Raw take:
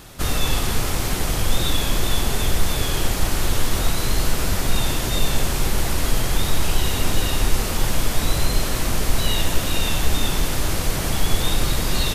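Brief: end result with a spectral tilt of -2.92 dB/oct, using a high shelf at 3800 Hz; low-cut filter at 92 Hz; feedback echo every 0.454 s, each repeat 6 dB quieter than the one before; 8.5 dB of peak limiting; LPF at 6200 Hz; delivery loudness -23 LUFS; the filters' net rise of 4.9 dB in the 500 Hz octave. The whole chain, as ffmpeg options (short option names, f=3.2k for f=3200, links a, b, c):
-af "highpass=92,lowpass=6.2k,equalizer=f=500:t=o:g=6,highshelf=f=3.8k:g=8,alimiter=limit=-18.5dB:level=0:latency=1,aecho=1:1:454|908|1362|1816|2270|2724:0.501|0.251|0.125|0.0626|0.0313|0.0157,volume=2.5dB"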